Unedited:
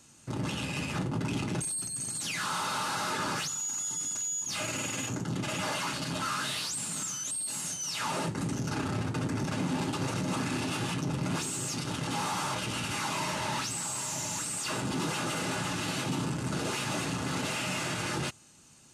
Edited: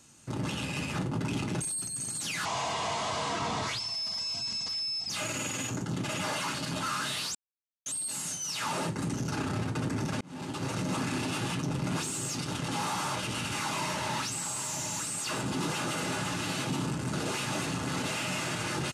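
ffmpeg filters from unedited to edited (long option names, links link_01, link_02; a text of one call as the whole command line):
ffmpeg -i in.wav -filter_complex "[0:a]asplit=6[link_01][link_02][link_03][link_04][link_05][link_06];[link_01]atrim=end=2.454[link_07];[link_02]atrim=start=2.45:end=4.49,asetpts=PTS-STARTPTS,asetrate=33957,aresample=44100,atrim=end_sample=116836,asetpts=PTS-STARTPTS[link_08];[link_03]atrim=start=4.486:end=6.74,asetpts=PTS-STARTPTS,afade=type=out:start_time=2.25:duration=0.004:curve=hsin[link_09];[link_04]atrim=start=6.74:end=7.25,asetpts=PTS-STARTPTS,volume=0[link_10];[link_05]atrim=start=7.25:end=9.6,asetpts=PTS-STARTPTS,afade=type=in:duration=0.004:curve=hsin,afade=type=out:start_time=2.346:duration=0.004:curve=hsin[link_11];[link_06]atrim=start=9.6,asetpts=PTS-STARTPTS,afade=type=in:duration=0.73:curve=qsin[link_12];[link_07][link_08]acrossfade=duration=0.004:curve1=hsin:curve2=hsin[link_13];[link_09][link_10][link_11][link_12]concat=n=4:v=0:a=1[link_14];[link_13][link_14]acrossfade=duration=0.004:curve1=hsin:curve2=hsin" out.wav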